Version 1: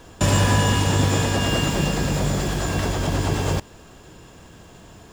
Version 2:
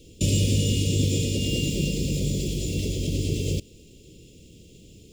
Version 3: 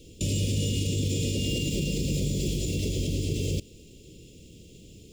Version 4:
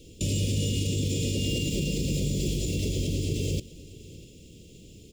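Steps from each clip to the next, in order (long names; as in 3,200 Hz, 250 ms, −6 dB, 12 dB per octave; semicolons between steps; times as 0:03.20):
inverse Chebyshev band-stop filter 800–1,600 Hz, stop band 50 dB; level −3 dB
brickwall limiter −19 dBFS, peak gain reduction 7.5 dB
single-tap delay 646 ms −20 dB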